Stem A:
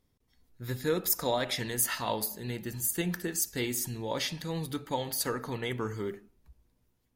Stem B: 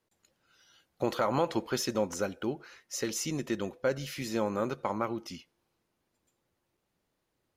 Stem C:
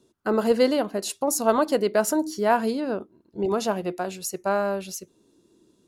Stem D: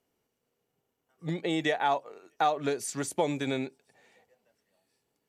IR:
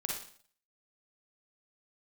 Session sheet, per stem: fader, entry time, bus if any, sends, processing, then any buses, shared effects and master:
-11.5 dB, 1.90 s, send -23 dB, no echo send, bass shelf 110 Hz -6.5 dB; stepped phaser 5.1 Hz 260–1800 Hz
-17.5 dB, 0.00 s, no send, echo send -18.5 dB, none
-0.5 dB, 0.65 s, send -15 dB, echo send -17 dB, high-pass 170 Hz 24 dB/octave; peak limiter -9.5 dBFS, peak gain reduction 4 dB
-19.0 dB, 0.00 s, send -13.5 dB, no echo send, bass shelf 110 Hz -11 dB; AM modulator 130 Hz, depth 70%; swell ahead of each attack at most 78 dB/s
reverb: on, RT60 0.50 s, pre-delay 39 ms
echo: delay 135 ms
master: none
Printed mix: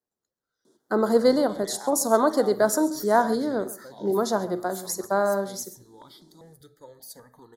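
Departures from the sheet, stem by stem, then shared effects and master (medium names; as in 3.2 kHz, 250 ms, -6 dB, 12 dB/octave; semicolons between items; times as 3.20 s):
stem C: missing peak limiter -9.5 dBFS, peak gain reduction 4 dB; stem D -19.0 dB -> -11.5 dB; master: extra Butterworth band-stop 2.6 kHz, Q 1.5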